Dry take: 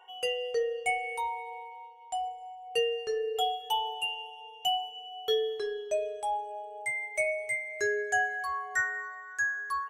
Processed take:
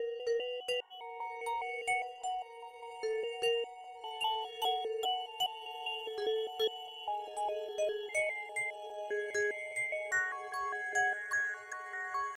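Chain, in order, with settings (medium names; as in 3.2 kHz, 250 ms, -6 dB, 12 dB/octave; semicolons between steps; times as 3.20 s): slices played last to first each 162 ms, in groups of 5; echo that smears into a reverb 1024 ms, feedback 53%, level -13 dB; tempo 0.8×; trim -4.5 dB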